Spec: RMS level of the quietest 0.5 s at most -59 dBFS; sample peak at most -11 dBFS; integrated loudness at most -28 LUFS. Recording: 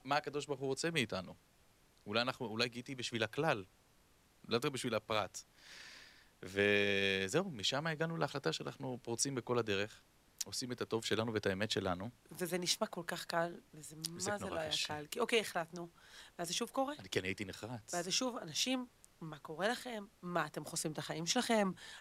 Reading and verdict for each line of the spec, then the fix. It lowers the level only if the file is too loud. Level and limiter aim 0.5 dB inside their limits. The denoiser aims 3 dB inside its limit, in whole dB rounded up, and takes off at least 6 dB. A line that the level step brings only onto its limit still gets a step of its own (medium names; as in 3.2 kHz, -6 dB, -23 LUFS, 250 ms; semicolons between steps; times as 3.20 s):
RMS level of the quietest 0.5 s -69 dBFS: pass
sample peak -19.0 dBFS: pass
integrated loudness -38.0 LUFS: pass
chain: none needed